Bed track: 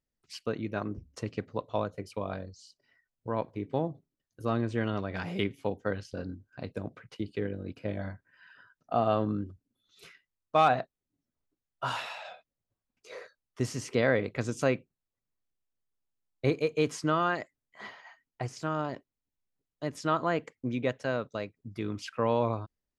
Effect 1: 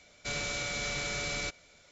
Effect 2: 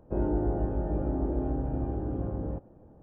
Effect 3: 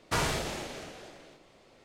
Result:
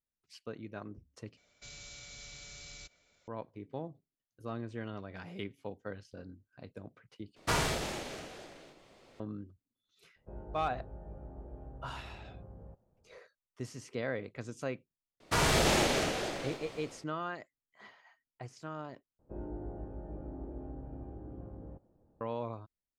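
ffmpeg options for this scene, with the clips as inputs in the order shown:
-filter_complex "[3:a]asplit=2[s0][s1];[2:a]asplit=2[s2][s3];[0:a]volume=0.299[s4];[1:a]acrossover=split=130|3000[s5][s6][s7];[s6]acompressor=threshold=0.00501:ratio=6:attack=3.2:release=140:knee=2.83:detection=peak[s8];[s5][s8][s7]amix=inputs=3:normalize=0[s9];[s2]equalizer=f=300:t=o:w=0.47:g=-12.5[s10];[s1]dynaudnorm=f=160:g=5:m=5.01[s11];[s4]asplit=4[s12][s13][s14][s15];[s12]atrim=end=1.374[s16];[s9]atrim=end=1.91,asetpts=PTS-STARTPTS,volume=0.282[s17];[s13]atrim=start=3.276:end=7.364[s18];[s0]atrim=end=1.84,asetpts=PTS-STARTPTS,volume=0.891[s19];[s14]atrim=start=9.196:end=19.194[s20];[s3]atrim=end=3.02,asetpts=PTS-STARTPTS,volume=0.2[s21];[s15]atrim=start=22.206[s22];[s10]atrim=end=3.02,asetpts=PTS-STARTPTS,volume=0.158,afade=t=in:d=0.004:c=hsin,afade=t=out:st=3.016:d=0.004:c=hsin,adelay=10160[s23];[s11]atrim=end=1.84,asetpts=PTS-STARTPTS,volume=0.841,afade=t=in:d=0.004:c=hsin,afade=t=out:st=1.836:d=0.004:c=hsin,adelay=15200[s24];[s16][s17]acrossfade=d=0.004:c1=hsin:c2=hsin[s25];[s25][s18]acrossfade=d=0.004:c1=hsin:c2=hsin[s26];[s26][s19]acrossfade=d=0.004:c1=hsin:c2=hsin[s27];[s27][s20]acrossfade=d=0.004:c1=hsin:c2=hsin[s28];[s28][s21]acrossfade=d=0.004:c1=hsin:c2=hsin[s29];[s29][s22]acrossfade=d=0.004:c1=hsin:c2=hsin[s30];[s30][s23][s24]amix=inputs=3:normalize=0"

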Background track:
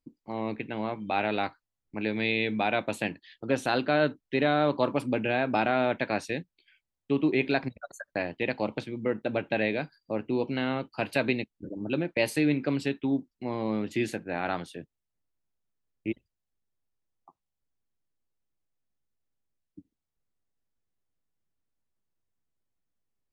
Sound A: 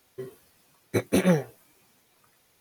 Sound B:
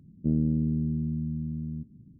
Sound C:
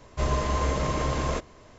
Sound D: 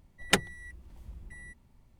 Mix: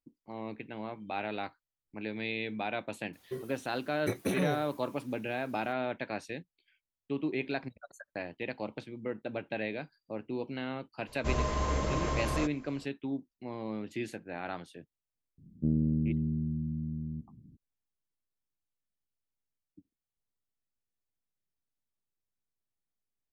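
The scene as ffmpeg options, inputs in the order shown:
-filter_complex "[0:a]volume=0.398[s0];[1:a]acompressor=threshold=0.0501:ratio=6:attack=3.2:release=140:knee=1:detection=peak,atrim=end=2.6,asetpts=PTS-STARTPTS,volume=0.944,afade=t=in:d=0.004:c=hsin,afade=t=out:st=2.596:d=0.004:c=hsin,adelay=138033S[s1];[3:a]atrim=end=1.78,asetpts=PTS-STARTPTS,volume=0.562,afade=t=in:d=0.004:c=hsin,afade=t=out:st=1.776:d=0.004:c=hsin,adelay=11070[s2];[2:a]atrim=end=2.19,asetpts=PTS-STARTPTS,volume=0.708,afade=t=in:d=0.004:c=hsin,afade=t=out:st=2.186:d=0.004:c=hsin,adelay=15380[s3];[s0][s1][s2][s3]amix=inputs=4:normalize=0"

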